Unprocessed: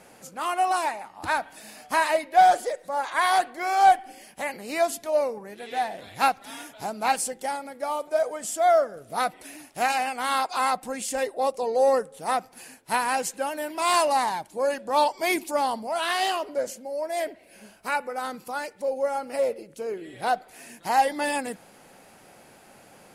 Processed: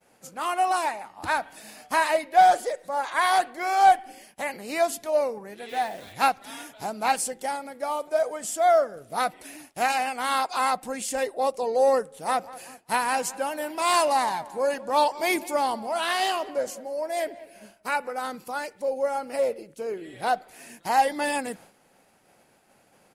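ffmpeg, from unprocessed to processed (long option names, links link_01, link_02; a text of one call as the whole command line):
ffmpeg -i in.wav -filter_complex "[0:a]asplit=3[link_01][link_02][link_03];[link_01]afade=type=out:start_time=5.68:duration=0.02[link_04];[link_02]acrusher=bits=9:dc=4:mix=0:aa=0.000001,afade=type=in:start_time=5.68:duration=0.02,afade=type=out:start_time=6.12:duration=0.02[link_05];[link_03]afade=type=in:start_time=6.12:duration=0.02[link_06];[link_04][link_05][link_06]amix=inputs=3:normalize=0,asplit=3[link_07][link_08][link_09];[link_07]afade=type=out:start_time=12.25:duration=0.02[link_10];[link_08]asplit=2[link_11][link_12];[link_12]adelay=191,lowpass=frequency=2200:poles=1,volume=-17.5dB,asplit=2[link_13][link_14];[link_14]adelay=191,lowpass=frequency=2200:poles=1,volume=0.52,asplit=2[link_15][link_16];[link_16]adelay=191,lowpass=frequency=2200:poles=1,volume=0.52,asplit=2[link_17][link_18];[link_18]adelay=191,lowpass=frequency=2200:poles=1,volume=0.52[link_19];[link_11][link_13][link_15][link_17][link_19]amix=inputs=5:normalize=0,afade=type=in:start_time=12.25:duration=0.02,afade=type=out:start_time=18.1:duration=0.02[link_20];[link_09]afade=type=in:start_time=18.1:duration=0.02[link_21];[link_10][link_20][link_21]amix=inputs=3:normalize=0,agate=range=-33dB:threshold=-44dB:ratio=3:detection=peak" out.wav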